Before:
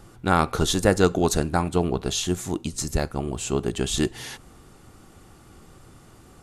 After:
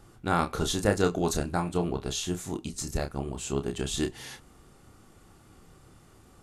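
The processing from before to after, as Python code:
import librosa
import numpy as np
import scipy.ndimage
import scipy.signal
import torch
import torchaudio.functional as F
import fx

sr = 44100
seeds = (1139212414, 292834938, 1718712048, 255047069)

y = fx.doubler(x, sr, ms=29.0, db=-7)
y = y * librosa.db_to_amplitude(-6.5)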